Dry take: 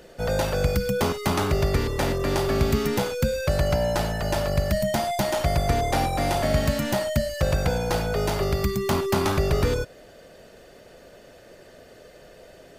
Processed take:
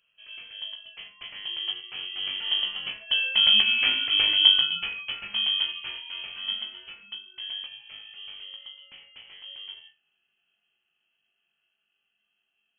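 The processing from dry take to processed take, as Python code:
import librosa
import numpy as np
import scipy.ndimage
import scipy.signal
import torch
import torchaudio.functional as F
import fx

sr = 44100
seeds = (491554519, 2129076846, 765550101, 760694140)

y = fx.doppler_pass(x, sr, speed_mps=13, closest_m=9.9, pass_at_s=3.97)
y = fx.low_shelf(y, sr, hz=140.0, db=4.0)
y = fx.room_flutter(y, sr, wall_m=3.5, rt60_s=0.24)
y = fx.freq_invert(y, sr, carrier_hz=3200)
y = fx.upward_expand(y, sr, threshold_db=-36.0, expansion=1.5)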